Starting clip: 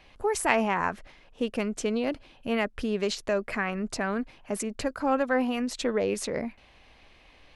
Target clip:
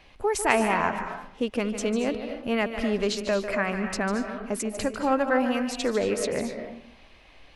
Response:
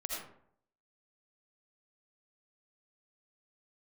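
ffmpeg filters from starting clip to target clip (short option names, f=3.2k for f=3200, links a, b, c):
-filter_complex "[0:a]asplit=2[a][b];[1:a]atrim=start_sample=2205,adelay=148[c];[b][c]afir=irnorm=-1:irlink=0,volume=-8dB[d];[a][d]amix=inputs=2:normalize=0,volume=1.5dB"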